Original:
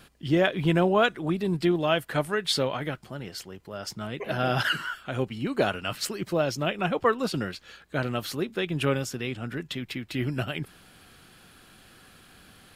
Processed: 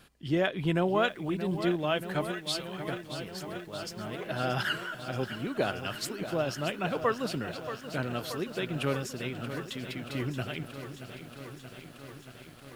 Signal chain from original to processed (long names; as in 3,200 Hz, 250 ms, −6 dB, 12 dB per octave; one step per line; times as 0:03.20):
0:02.31–0:02.88: guitar amp tone stack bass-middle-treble 10-0-10
feedback echo at a low word length 629 ms, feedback 80%, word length 8 bits, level −11 dB
level −5 dB